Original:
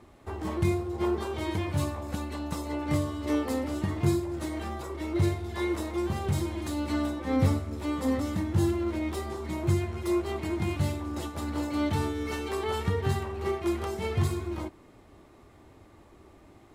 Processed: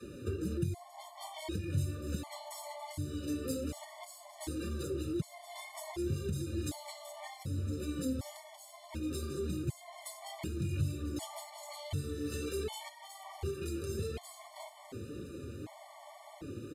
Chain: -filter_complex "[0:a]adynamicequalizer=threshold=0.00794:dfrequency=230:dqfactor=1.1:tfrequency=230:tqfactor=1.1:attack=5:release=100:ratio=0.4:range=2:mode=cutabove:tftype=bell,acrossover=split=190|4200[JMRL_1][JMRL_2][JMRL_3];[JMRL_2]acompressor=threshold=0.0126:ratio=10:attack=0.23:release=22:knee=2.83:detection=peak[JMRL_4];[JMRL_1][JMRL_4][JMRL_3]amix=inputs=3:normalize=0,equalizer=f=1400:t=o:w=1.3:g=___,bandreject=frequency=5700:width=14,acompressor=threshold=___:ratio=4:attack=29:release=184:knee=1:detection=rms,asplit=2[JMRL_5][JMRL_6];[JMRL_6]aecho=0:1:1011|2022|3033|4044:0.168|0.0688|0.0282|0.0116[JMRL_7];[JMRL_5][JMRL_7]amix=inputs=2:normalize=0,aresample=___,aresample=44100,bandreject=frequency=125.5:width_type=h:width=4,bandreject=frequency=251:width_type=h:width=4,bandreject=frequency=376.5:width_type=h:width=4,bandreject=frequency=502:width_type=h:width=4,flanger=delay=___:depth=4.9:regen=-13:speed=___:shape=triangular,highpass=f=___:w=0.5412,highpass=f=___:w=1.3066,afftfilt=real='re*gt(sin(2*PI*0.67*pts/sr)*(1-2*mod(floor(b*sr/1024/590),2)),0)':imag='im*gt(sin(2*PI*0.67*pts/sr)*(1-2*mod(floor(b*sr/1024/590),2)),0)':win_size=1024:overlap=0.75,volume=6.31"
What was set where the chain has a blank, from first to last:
-8, 0.00501, 32000, 4.1, 1.9, 67, 67